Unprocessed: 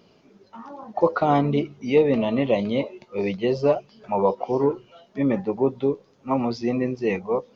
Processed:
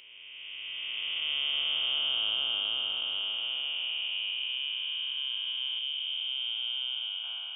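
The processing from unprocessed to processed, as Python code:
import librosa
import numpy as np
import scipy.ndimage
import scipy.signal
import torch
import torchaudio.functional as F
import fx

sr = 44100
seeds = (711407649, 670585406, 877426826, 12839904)

y = fx.spec_blur(x, sr, span_ms=1210.0)
y = fx.high_shelf(y, sr, hz=2000.0, db=-11.5, at=(5.79, 7.24))
y = fx.freq_invert(y, sr, carrier_hz=3400)
y = F.gain(torch.from_numpy(y), -4.0).numpy()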